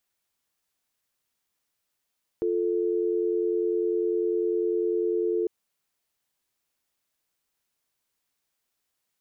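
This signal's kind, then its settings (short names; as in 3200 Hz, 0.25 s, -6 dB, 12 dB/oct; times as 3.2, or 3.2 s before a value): call progress tone dial tone, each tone -25.5 dBFS 3.05 s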